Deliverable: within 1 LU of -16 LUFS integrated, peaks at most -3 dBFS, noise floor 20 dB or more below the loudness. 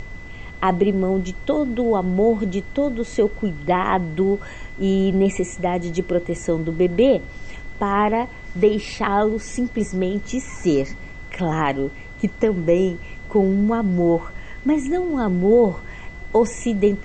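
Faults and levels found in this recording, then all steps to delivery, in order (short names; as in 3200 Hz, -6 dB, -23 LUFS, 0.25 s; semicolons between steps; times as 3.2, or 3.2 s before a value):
steady tone 2000 Hz; tone level -40 dBFS; noise floor -37 dBFS; noise floor target -41 dBFS; loudness -21.0 LUFS; peak -5.5 dBFS; loudness target -16.0 LUFS
-> notch 2000 Hz, Q 30; noise print and reduce 6 dB; gain +5 dB; limiter -3 dBFS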